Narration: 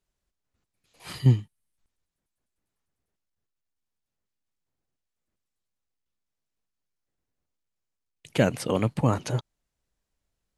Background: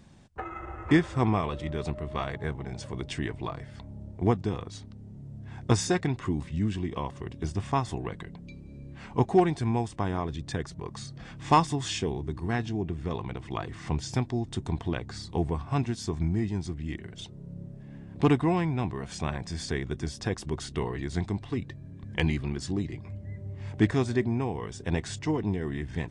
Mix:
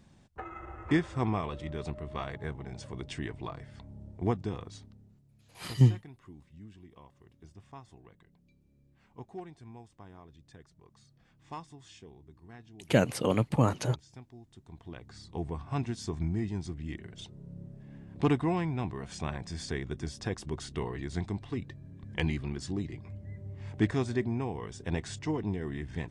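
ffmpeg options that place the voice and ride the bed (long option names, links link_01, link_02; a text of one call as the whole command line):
ffmpeg -i stem1.wav -i stem2.wav -filter_complex "[0:a]adelay=4550,volume=-2dB[link_01];[1:a]volume=12.5dB,afade=type=out:start_time=4.71:duration=0.5:silence=0.149624,afade=type=in:start_time=14.66:duration=1.26:silence=0.133352[link_02];[link_01][link_02]amix=inputs=2:normalize=0" out.wav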